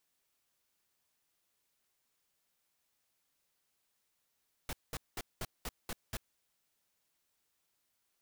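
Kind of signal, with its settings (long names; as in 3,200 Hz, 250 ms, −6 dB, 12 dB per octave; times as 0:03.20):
noise bursts pink, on 0.04 s, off 0.20 s, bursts 7, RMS −39 dBFS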